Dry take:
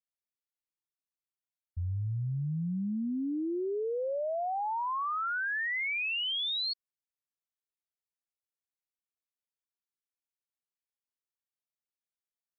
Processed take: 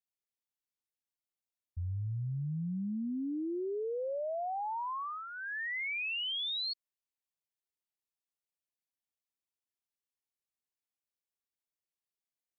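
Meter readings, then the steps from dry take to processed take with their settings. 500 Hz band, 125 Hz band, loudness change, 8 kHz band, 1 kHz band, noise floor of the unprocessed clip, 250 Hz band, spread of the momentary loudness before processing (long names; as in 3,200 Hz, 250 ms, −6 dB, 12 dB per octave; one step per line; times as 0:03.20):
−3.0 dB, −3.0 dB, −3.5 dB, can't be measured, −4.5 dB, below −85 dBFS, −3.0 dB, 5 LU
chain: parametric band 1,400 Hz −9.5 dB 0.36 octaves
level −3 dB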